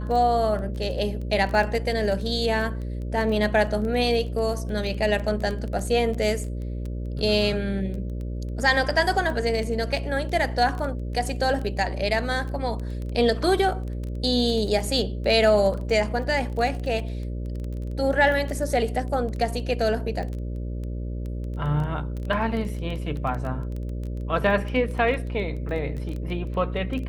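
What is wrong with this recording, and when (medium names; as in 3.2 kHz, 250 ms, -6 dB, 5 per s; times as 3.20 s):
buzz 60 Hz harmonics 10 -30 dBFS
crackle 10 per s -29 dBFS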